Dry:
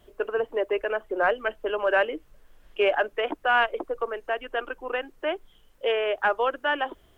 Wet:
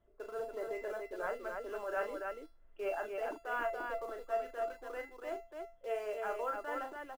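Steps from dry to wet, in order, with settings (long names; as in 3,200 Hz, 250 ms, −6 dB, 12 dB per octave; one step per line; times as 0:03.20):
low-pass filter 1,500 Hz 12 dB per octave
notch filter 710 Hz, Q 12
transient designer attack −5 dB, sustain +1 dB
in parallel at −11.5 dB: bit-depth reduction 6 bits, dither none
on the sum: tuned comb filter 680 Hz, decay 0.33 s, mix 90%
loudspeakers that aren't time-aligned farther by 13 metres −7 dB, 98 metres −4 dB
level +3 dB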